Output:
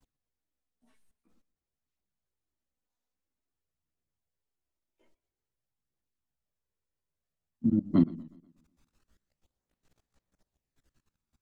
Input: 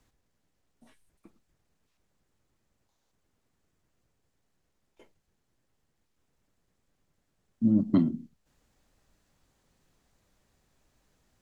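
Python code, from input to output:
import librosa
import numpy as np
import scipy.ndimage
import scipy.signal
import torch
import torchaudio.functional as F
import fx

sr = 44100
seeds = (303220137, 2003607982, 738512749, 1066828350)

y = fx.level_steps(x, sr, step_db=23)
y = fx.chorus_voices(y, sr, voices=2, hz=0.25, base_ms=14, depth_ms=2.3, mix_pct=65)
y = fx.echo_warbled(y, sr, ms=122, feedback_pct=45, rate_hz=2.8, cents=123, wet_db=-20.5)
y = F.gain(torch.from_numpy(y), 3.0).numpy()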